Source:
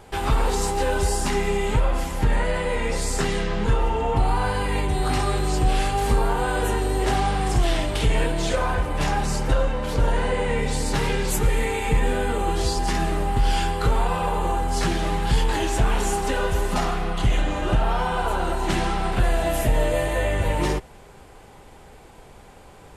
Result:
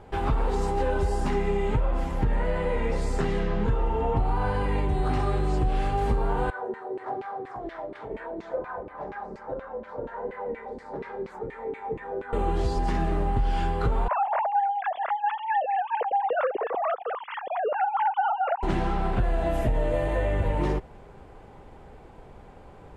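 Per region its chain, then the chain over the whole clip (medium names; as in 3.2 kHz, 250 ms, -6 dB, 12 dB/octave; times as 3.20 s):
6.50–12.33 s: peaking EQ 2.8 kHz -11 dB 0.52 oct + hum notches 50/100/150/200/250/300/350 Hz + LFO band-pass saw down 4.2 Hz 270–2600 Hz
14.08–18.63 s: formants replaced by sine waves + lamp-driven phase shifter 4.4 Hz
whole clip: low-pass 1.1 kHz 6 dB/octave; compression, threshold -20 dBFS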